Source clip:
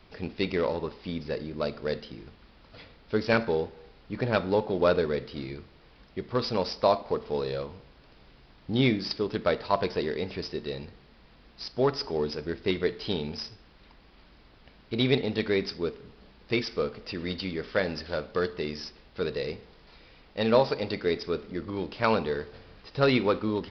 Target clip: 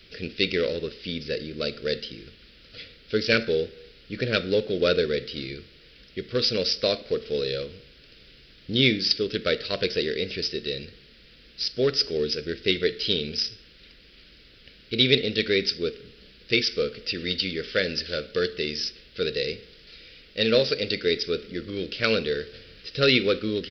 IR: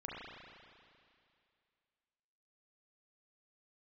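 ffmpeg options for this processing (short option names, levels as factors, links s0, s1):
-af "firequalizer=gain_entry='entry(270,0);entry(490,4);entry(880,-22);entry(1400,2);entry(2900,11)':delay=0.05:min_phase=1"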